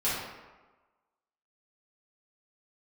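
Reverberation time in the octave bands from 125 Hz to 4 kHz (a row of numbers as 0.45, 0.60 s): 1.0, 1.1, 1.2, 1.3, 1.0, 0.75 s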